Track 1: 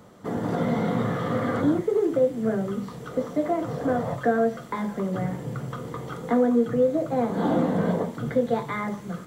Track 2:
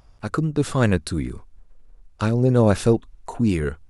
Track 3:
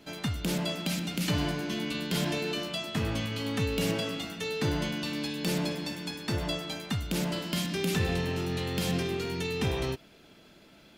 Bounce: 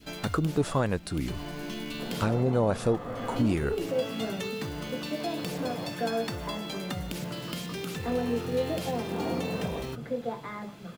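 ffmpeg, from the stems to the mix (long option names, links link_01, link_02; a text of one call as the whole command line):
ffmpeg -i stem1.wav -i stem2.wav -i stem3.wav -filter_complex "[0:a]adelay=1750,volume=-10.5dB[link_01];[1:a]volume=-4dB,asplit=2[link_02][link_03];[2:a]acompressor=threshold=-36dB:ratio=6,acrusher=bits=4:mode=log:mix=0:aa=0.000001,volume=2.5dB[link_04];[link_03]apad=whole_len=483960[link_05];[link_04][link_05]sidechaincompress=threshold=-27dB:ratio=5:attack=45:release=858[link_06];[link_01][link_02][link_06]amix=inputs=3:normalize=0,adynamicequalizer=threshold=0.0178:dfrequency=790:dqfactor=0.91:tfrequency=790:tqfactor=0.91:attack=5:release=100:ratio=0.375:range=3.5:mode=boostabove:tftype=bell,alimiter=limit=-15.5dB:level=0:latency=1:release=437" out.wav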